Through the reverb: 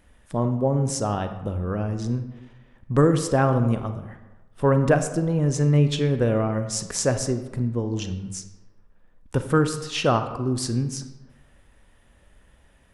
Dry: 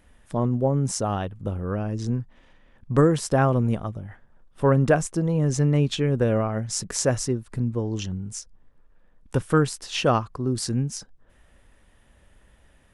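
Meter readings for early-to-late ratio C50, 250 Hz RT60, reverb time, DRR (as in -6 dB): 9.5 dB, 1.1 s, 1.1 s, 8.5 dB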